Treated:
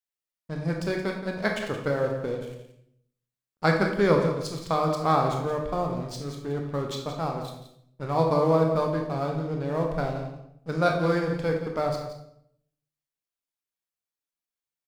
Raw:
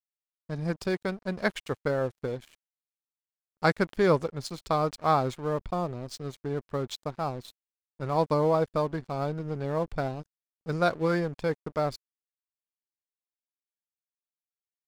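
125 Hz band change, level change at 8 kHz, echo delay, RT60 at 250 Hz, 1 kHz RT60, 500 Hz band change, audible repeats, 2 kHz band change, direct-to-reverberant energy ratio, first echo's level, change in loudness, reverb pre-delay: +3.5 dB, +2.0 dB, 173 ms, 0.90 s, 0.65 s, +2.5 dB, 1, +2.5 dB, 1.0 dB, -11.0 dB, +2.5 dB, 20 ms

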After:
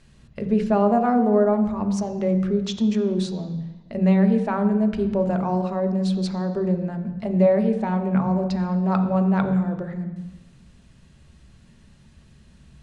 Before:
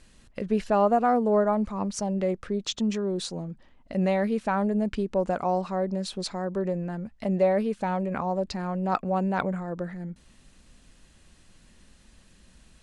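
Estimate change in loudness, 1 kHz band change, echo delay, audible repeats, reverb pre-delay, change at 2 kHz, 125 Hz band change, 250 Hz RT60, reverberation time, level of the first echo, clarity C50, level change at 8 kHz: +5.0 dB, +0.5 dB, no echo, no echo, 3 ms, 0.0 dB, +8.5 dB, 0.95 s, 1.1 s, no echo, 9.5 dB, no reading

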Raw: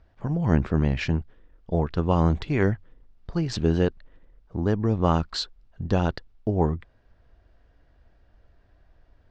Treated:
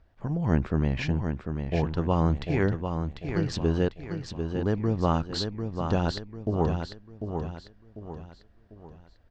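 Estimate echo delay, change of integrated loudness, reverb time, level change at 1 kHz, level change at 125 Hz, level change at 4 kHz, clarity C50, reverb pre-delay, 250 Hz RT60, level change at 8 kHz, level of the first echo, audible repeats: 746 ms, -3.0 dB, no reverb, -2.0 dB, -2.0 dB, -2.0 dB, no reverb, no reverb, no reverb, no reading, -6.5 dB, 4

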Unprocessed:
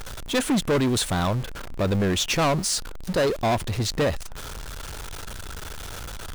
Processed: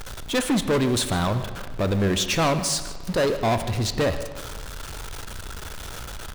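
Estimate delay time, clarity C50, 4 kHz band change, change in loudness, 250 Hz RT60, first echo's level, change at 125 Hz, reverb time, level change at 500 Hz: 152 ms, 10.5 dB, +0.5 dB, +0.5 dB, 1.5 s, -16.5 dB, +0.5 dB, 1.7 s, +0.5 dB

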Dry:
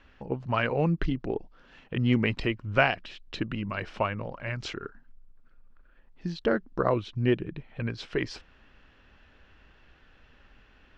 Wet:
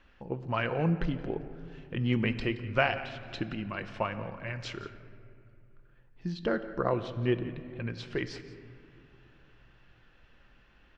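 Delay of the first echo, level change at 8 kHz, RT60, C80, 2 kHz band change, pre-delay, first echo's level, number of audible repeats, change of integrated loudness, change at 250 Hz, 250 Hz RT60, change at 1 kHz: 173 ms, no reading, 2.4 s, 12.0 dB, -3.5 dB, 6 ms, -17.0 dB, 1, -3.5 dB, -3.0 dB, 3.1 s, -3.5 dB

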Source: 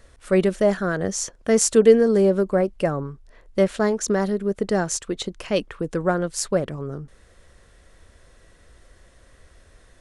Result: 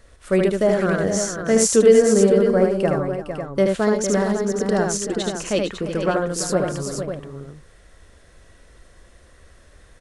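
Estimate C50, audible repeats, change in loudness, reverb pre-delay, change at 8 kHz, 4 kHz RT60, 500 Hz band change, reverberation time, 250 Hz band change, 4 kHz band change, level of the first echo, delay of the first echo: no reverb, 4, +2.0 dB, no reverb, +2.5 dB, no reverb, +2.5 dB, no reverb, +2.0 dB, +2.5 dB, -3.5 dB, 76 ms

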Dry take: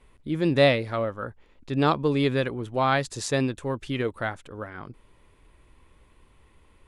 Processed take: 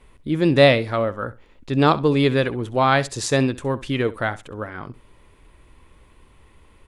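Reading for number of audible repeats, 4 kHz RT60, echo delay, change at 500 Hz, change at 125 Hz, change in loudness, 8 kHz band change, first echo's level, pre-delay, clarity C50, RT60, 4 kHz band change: 2, no reverb, 66 ms, +5.5 dB, +5.5 dB, +5.5 dB, +5.5 dB, -18.0 dB, no reverb, no reverb, no reverb, +5.5 dB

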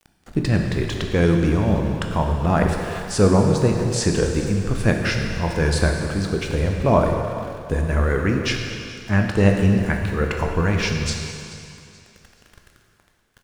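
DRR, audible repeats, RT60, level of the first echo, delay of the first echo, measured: 2.0 dB, 2, 2.6 s, -18.5 dB, 431 ms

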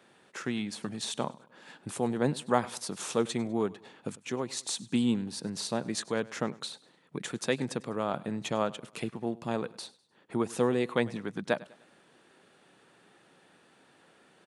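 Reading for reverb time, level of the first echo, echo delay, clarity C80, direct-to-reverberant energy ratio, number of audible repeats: no reverb, -21.0 dB, 100 ms, no reverb, no reverb, 2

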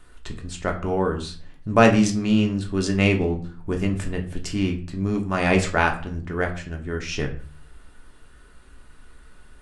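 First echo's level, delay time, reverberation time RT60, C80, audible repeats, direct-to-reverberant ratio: no echo, no echo, 0.45 s, 15.5 dB, no echo, 2.0 dB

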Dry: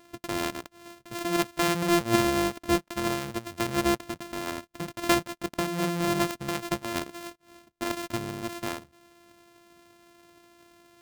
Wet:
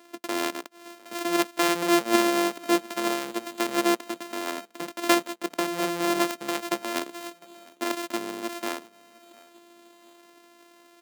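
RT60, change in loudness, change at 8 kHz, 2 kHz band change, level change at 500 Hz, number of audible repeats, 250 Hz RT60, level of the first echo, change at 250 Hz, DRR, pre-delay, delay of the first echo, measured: no reverb, +2.0 dB, +2.5 dB, +2.5 dB, +2.5 dB, 2, no reverb, -23.5 dB, +1.5 dB, no reverb, no reverb, 704 ms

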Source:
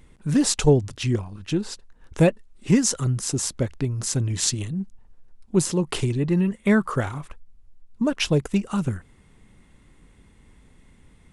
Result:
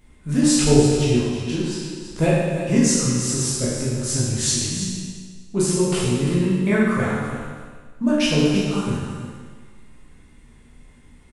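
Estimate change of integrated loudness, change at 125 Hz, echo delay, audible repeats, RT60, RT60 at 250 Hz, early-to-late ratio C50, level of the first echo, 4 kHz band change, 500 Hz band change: +3.0 dB, +2.0 dB, 328 ms, 1, 1.6 s, 1.6 s, -2.0 dB, -9.5 dB, +4.5 dB, +3.5 dB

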